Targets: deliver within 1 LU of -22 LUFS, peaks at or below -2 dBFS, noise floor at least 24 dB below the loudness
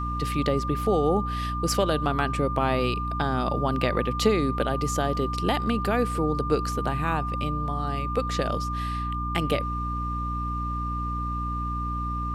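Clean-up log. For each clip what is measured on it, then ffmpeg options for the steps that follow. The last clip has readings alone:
hum 60 Hz; highest harmonic 300 Hz; hum level -28 dBFS; steady tone 1.2 kHz; tone level -30 dBFS; loudness -26.5 LUFS; peak level -8.5 dBFS; loudness target -22.0 LUFS
-> -af "bandreject=f=60:t=h:w=6,bandreject=f=120:t=h:w=6,bandreject=f=180:t=h:w=6,bandreject=f=240:t=h:w=6,bandreject=f=300:t=h:w=6"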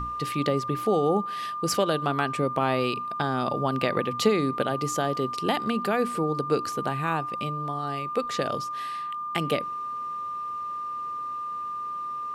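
hum not found; steady tone 1.2 kHz; tone level -30 dBFS
-> -af "bandreject=f=1200:w=30"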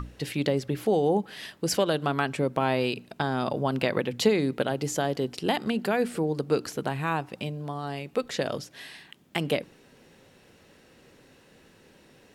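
steady tone not found; loudness -28.0 LUFS; peak level -9.0 dBFS; loudness target -22.0 LUFS
-> -af "volume=2"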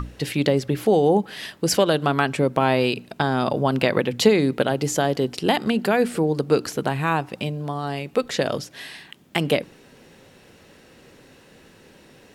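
loudness -22.0 LUFS; peak level -3.0 dBFS; noise floor -52 dBFS

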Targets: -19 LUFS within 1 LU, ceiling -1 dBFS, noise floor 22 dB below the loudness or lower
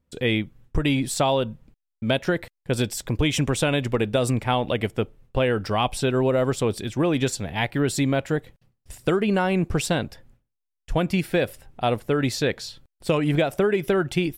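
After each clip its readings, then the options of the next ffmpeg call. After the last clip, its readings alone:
loudness -24.0 LUFS; peak level -9.0 dBFS; loudness target -19.0 LUFS
-> -af "volume=1.78"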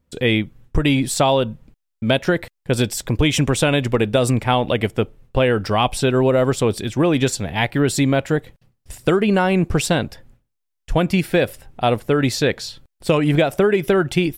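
loudness -19.0 LUFS; peak level -4.0 dBFS; noise floor -76 dBFS

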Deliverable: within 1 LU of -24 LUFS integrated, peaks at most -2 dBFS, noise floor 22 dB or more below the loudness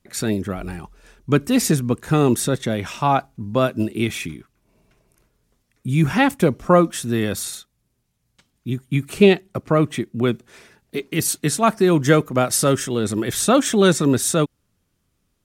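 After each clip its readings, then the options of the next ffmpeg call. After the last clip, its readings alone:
loudness -19.5 LUFS; peak level -1.0 dBFS; loudness target -24.0 LUFS
-> -af "volume=0.596"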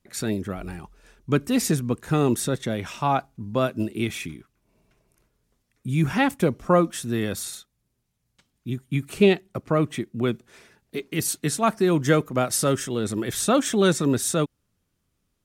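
loudness -24.0 LUFS; peak level -5.5 dBFS; noise floor -75 dBFS

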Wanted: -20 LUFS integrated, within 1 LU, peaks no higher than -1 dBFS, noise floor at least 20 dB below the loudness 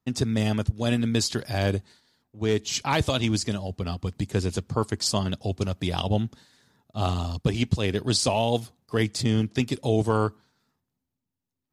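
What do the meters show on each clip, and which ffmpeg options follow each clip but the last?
loudness -26.5 LUFS; peak level -8.5 dBFS; loudness target -20.0 LUFS
-> -af "volume=2.11"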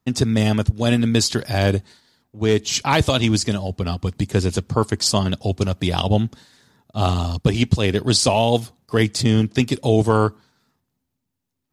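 loudness -20.0 LUFS; peak level -2.0 dBFS; noise floor -78 dBFS

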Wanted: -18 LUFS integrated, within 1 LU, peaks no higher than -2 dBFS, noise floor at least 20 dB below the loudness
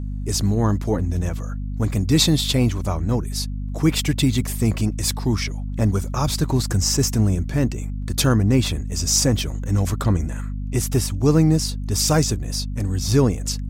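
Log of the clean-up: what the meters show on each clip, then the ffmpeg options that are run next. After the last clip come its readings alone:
hum 50 Hz; highest harmonic 250 Hz; hum level -25 dBFS; loudness -21.0 LUFS; peak level -4.5 dBFS; loudness target -18.0 LUFS
-> -af "bandreject=f=50:t=h:w=6,bandreject=f=100:t=h:w=6,bandreject=f=150:t=h:w=6,bandreject=f=200:t=h:w=6,bandreject=f=250:t=h:w=6"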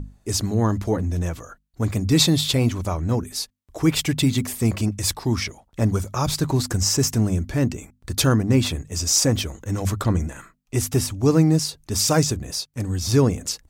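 hum not found; loudness -22.0 LUFS; peak level -4.5 dBFS; loudness target -18.0 LUFS
-> -af "volume=1.58,alimiter=limit=0.794:level=0:latency=1"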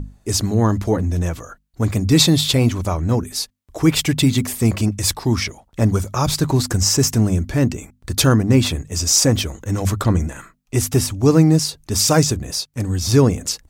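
loudness -18.0 LUFS; peak level -2.0 dBFS; noise floor -60 dBFS

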